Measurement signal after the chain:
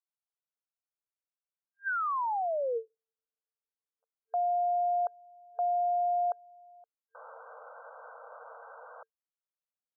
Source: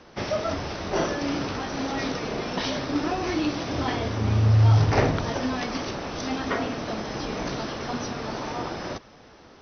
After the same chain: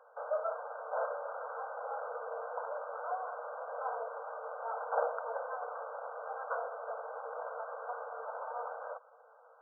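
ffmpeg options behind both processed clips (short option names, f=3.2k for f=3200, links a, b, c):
-af "afftfilt=real='re*between(b*sr/4096,450,1600)':imag='im*between(b*sr/4096,450,1600)':win_size=4096:overlap=0.75,volume=-6.5dB"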